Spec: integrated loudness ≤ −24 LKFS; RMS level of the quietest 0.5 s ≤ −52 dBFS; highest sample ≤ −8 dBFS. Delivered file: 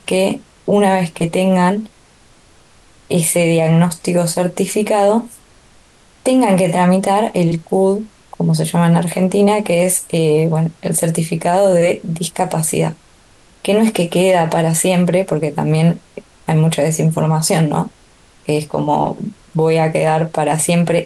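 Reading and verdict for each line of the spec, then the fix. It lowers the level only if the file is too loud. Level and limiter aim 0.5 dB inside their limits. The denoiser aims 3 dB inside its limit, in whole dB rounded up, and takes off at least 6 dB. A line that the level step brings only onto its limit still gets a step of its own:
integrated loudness −15.5 LKFS: out of spec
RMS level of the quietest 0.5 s −48 dBFS: out of spec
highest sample −4.5 dBFS: out of spec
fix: level −9 dB

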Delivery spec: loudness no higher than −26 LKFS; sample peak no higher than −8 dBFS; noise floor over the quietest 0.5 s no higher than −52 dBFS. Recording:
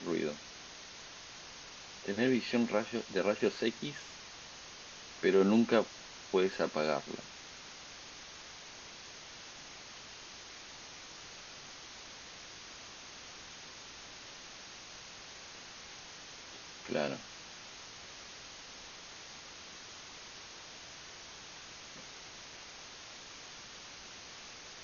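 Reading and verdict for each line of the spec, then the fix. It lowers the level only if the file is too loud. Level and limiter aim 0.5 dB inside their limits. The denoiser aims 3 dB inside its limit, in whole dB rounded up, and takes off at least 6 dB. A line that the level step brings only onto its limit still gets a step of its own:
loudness −39.0 LKFS: in spec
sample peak −14.0 dBFS: in spec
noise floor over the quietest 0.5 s −50 dBFS: out of spec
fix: broadband denoise 6 dB, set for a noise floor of −50 dBFS

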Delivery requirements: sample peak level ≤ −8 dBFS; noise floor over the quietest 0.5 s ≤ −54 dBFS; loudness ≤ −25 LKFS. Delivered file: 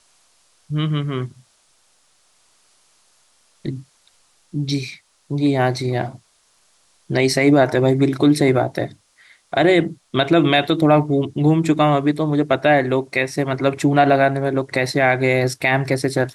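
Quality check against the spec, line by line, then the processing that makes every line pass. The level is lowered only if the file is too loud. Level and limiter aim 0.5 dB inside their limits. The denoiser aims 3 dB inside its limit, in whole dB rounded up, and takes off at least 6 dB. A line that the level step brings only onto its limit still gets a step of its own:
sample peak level −5.0 dBFS: out of spec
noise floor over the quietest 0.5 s −60 dBFS: in spec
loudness −18.0 LKFS: out of spec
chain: level −7.5 dB

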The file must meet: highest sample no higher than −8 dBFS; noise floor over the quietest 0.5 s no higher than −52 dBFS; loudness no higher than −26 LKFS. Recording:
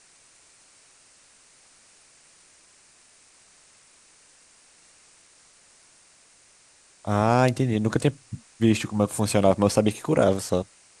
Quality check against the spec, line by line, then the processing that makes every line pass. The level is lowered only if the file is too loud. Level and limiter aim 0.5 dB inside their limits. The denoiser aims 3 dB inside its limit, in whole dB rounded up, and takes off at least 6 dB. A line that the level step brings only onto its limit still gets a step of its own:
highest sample −5.0 dBFS: out of spec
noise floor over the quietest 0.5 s −57 dBFS: in spec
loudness −23.0 LKFS: out of spec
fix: level −3.5 dB

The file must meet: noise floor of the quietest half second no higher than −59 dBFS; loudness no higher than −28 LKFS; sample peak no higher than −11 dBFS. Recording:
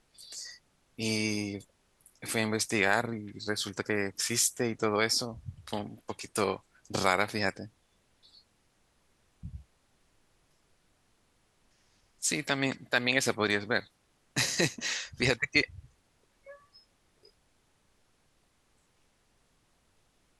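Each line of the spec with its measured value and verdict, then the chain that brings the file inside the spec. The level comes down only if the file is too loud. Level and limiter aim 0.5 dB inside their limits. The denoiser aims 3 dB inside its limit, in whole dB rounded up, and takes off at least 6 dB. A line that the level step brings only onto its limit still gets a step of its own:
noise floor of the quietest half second −70 dBFS: in spec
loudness −30.0 LKFS: in spec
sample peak −8.0 dBFS: out of spec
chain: brickwall limiter −11.5 dBFS

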